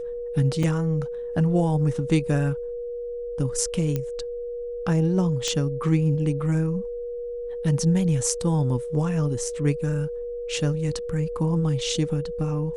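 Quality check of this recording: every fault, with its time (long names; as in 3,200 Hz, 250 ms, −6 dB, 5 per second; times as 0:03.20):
whistle 480 Hz −29 dBFS
0:00.63: drop-out 3.4 ms
0:03.96: click −14 dBFS
0:05.48: click −13 dBFS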